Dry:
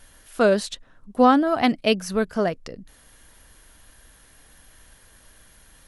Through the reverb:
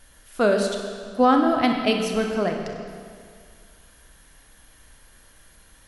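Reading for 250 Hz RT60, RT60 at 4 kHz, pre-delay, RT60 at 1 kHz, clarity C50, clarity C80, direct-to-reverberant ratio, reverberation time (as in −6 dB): 2.1 s, 1.9 s, 31 ms, 2.1 s, 4.0 dB, 5.5 dB, 3.0 dB, 2.1 s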